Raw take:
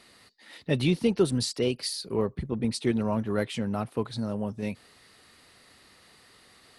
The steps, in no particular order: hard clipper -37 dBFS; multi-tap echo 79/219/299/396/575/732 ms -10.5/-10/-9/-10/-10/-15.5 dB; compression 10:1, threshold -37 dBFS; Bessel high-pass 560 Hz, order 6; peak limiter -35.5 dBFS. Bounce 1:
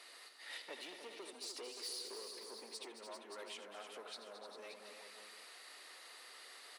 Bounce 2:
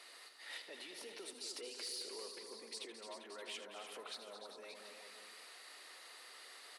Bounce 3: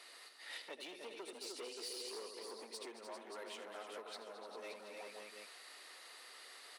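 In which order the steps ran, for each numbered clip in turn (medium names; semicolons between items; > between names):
compression > hard clipper > multi-tap echo > peak limiter > Bessel high-pass; peak limiter > multi-tap echo > compression > Bessel high-pass > hard clipper; multi-tap echo > compression > hard clipper > Bessel high-pass > peak limiter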